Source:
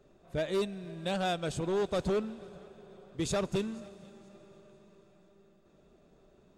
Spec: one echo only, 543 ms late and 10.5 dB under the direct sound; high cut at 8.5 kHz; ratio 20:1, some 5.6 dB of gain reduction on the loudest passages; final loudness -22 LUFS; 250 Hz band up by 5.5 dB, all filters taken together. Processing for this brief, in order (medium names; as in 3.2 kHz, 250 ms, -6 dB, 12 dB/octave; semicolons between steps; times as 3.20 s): low-pass 8.5 kHz; peaking EQ 250 Hz +8.5 dB; compression 20:1, threshold -28 dBFS; delay 543 ms -10.5 dB; trim +13.5 dB